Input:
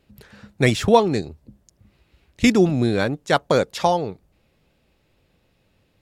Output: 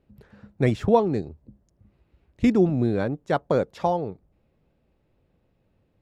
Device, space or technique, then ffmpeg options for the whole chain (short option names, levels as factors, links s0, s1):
through cloth: -af "highshelf=f=1900:g=-16.5,volume=0.75"